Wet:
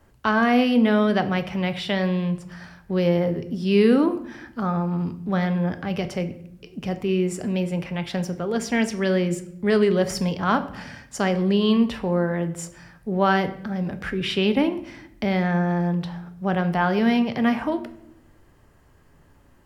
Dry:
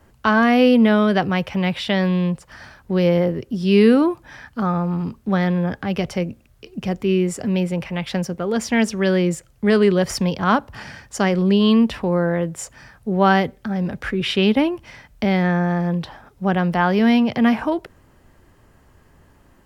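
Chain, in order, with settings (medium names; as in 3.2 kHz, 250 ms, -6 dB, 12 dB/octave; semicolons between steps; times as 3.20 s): simulated room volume 160 m³, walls mixed, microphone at 0.32 m; trim -4 dB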